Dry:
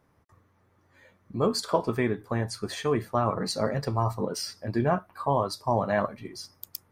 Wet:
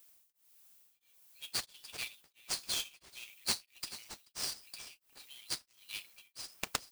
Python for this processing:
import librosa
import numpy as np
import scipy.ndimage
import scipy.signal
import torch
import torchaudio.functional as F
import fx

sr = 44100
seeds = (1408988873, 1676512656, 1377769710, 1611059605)

p1 = fx.self_delay(x, sr, depth_ms=0.1)
p2 = scipy.signal.sosfilt(scipy.signal.butter(12, 2500.0, 'highpass', fs=sr, output='sos'), p1)
p3 = fx.high_shelf(p2, sr, hz=10000.0, db=8.5)
p4 = p3 + 0.33 * np.pad(p3, (int(6.4 * sr / 1000.0), 0))[:len(p3)]
p5 = fx.sample_hold(p4, sr, seeds[0], rate_hz=14000.0, jitter_pct=20)
p6 = 10.0 ** (-29.0 / 20.0) * np.tanh(p5 / 10.0 ** (-29.0 / 20.0))
p7 = p5 + (p6 * librosa.db_to_amplitude(-6.0))
p8 = fx.dmg_noise_colour(p7, sr, seeds[1], colour='violet', level_db=-62.0)
p9 = p8 + fx.echo_single(p8, sr, ms=434, db=-17.5, dry=0)
y = p9 * np.abs(np.cos(np.pi * 1.5 * np.arange(len(p9)) / sr))